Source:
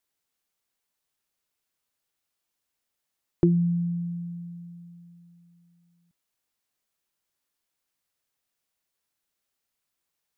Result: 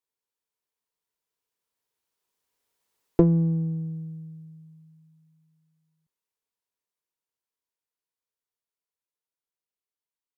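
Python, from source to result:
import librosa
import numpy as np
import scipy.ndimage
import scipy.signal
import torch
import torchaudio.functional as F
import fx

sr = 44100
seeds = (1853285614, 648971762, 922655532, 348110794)

y = fx.diode_clip(x, sr, knee_db=-24.0)
y = fx.doppler_pass(y, sr, speed_mps=30, closest_m=18.0, pass_at_s=3.07)
y = fx.small_body(y, sr, hz=(440.0, 960.0), ring_ms=30, db=9)
y = y * librosa.db_to_amplitude(4.5)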